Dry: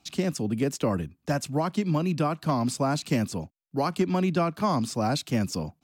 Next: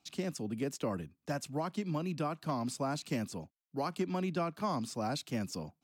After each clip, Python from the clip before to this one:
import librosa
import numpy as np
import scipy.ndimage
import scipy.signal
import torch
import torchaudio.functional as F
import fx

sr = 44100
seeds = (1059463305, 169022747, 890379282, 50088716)

y = fx.low_shelf(x, sr, hz=86.0, db=-9.5)
y = y * 10.0 ** (-8.5 / 20.0)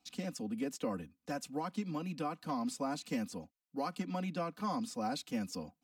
y = x + 0.84 * np.pad(x, (int(4.0 * sr / 1000.0), 0))[:len(x)]
y = y * 10.0 ** (-4.5 / 20.0)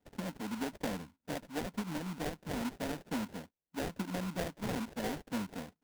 y = fx.high_shelf(x, sr, hz=5100.0, db=-12.0)
y = fx.sample_hold(y, sr, seeds[0], rate_hz=1200.0, jitter_pct=20)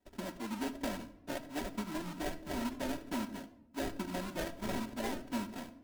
y = x + 0.66 * np.pad(x, (int(3.1 * sr / 1000.0), 0))[:len(x)]
y = fx.room_shoebox(y, sr, seeds[1], volume_m3=3000.0, walls='furnished', distance_m=1.1)
y = fx.record_warp(y, sr, rpm=78.0, depth_cents=100.0)
y = y * 10.0 ** (-2.0 / 20.0)